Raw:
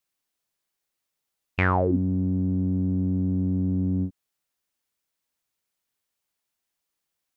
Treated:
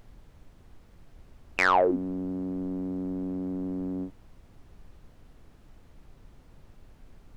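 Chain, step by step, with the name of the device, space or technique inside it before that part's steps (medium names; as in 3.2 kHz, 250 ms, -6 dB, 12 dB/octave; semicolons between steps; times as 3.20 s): aircraft cabin announcement (band-pass 480–3100 Hz; saturation -19 dBFS, distortion -13 dB; brown noise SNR 17 dB); trim +6.5 dB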